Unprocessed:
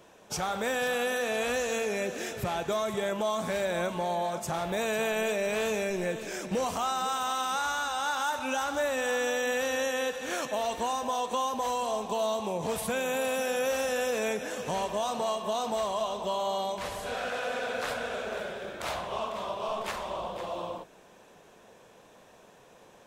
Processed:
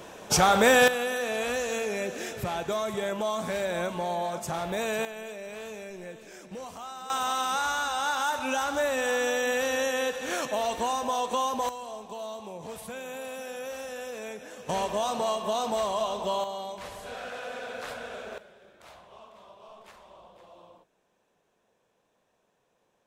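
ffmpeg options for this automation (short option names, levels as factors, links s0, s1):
-af "asetnsamples=n=441:p=0,asendcmd='0.88 volume volume 0dB;5.05 volume volume -10.5dB;7.1 volume volume 2dB;11.69 volume volume -8.5dB;14.69 volume volume 2dB;16.44 volume volume -5dB;18.38 volume volume -17dB',volume=3.55"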